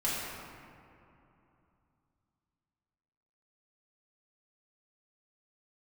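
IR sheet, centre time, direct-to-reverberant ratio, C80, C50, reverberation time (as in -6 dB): 0.14 s, -9.0 dB, -0.5 dB, -2.5 dB, 2.9 s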